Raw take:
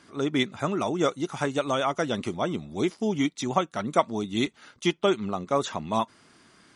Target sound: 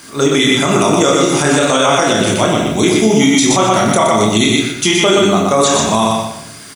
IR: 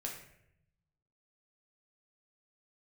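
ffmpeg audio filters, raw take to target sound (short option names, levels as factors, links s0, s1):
-filter_complex "[0:a]aemphasis=mode=production:type=75fm,acrusher=bits=9:mix=0:aa=0.000001,aecho=1:1:122|244|366|488:0.596|0.179|0.0536|0.0161,asplit=2[s0][s1];[1:a]atrim=start_sample=2205,adelay=27[s2];[s1][s2]afir=irnorm=-1:irlink=0,volume=1.06[s3];[s0][s3]amix=inputs=2:normalize=0,alimiter=level_in=5.31:limit=0.891:release=50:level=0:latency=1,volume=0.891"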